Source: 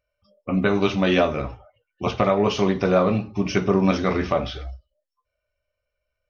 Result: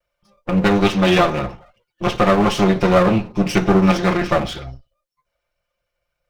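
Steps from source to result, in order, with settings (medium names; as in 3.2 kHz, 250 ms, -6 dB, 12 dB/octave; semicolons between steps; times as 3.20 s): comb filter that takes the minimum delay 5.7 ms; trim +5.5 dB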